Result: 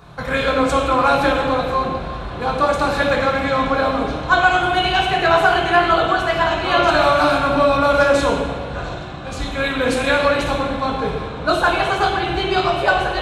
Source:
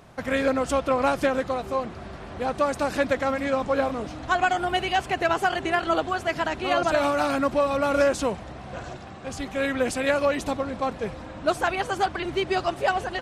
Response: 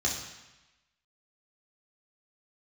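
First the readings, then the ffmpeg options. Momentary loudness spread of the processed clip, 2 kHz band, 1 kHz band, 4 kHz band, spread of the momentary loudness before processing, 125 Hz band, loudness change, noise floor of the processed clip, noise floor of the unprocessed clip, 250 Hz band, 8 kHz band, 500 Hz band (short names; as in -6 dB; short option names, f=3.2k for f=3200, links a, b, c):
10 LU, +9.5 dB, +8.5 dB, +10.5 dB, 11 LU, +10.5 dB, +7.5 dB, -29 dBFS, -40 dBFS, +6.0 dB, +3.0 dB, +6.5 dB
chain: -filter_complex "[0:a]bandreject=f=1.9k:w=11,asplit=2[a][b];[1:a]atrim=start_sample=2205,asetrate=25137,aresample=44100[c];[b][c]afir=irnorm=-1:irlink=0,volume=-8dB[d];[a][d]amix=inputs=2:normalize=0,volume=3.5dB"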